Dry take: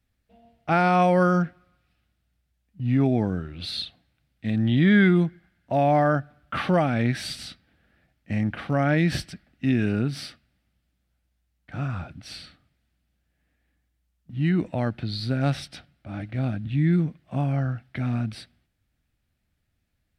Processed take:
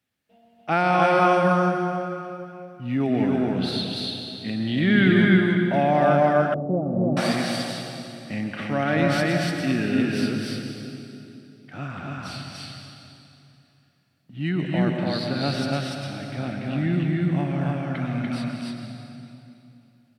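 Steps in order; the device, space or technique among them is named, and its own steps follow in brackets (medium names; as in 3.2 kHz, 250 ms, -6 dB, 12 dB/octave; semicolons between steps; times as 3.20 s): stadium PA (high-pass 190 Hz 6 dB/octave; peaking EQ 2.9 kHz +3 dB 0.27 oct; loudspeakers at several distances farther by 78 m -12 dB, 100 m -1 dB; reverberation RT60 2.8 s, pre-delay 106 ms, DRR 3.5 dB); high-pass 110 Hz; 6.54–7.17 s: inverse Chebyshev low-pass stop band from 3.2 kHz, stop band 80 dB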